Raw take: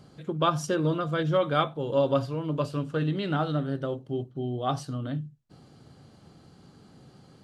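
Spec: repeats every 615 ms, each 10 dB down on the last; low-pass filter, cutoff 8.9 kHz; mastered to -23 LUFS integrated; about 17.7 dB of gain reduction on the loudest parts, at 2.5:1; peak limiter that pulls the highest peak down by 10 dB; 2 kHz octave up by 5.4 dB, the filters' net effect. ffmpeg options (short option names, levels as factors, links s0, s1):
-af "lowpass=8900,equalizer=f=2000:t=o:g=8,acompressor=threshold=0.00501:ratio=2.5,alimiter=level_in=3.98:limit=0.0631:level=0:latency=1,volume=0.251,aecho=1:1:615|1230|1845|2460:0.316|0.101|0.0324|0.0104,volume=14.1"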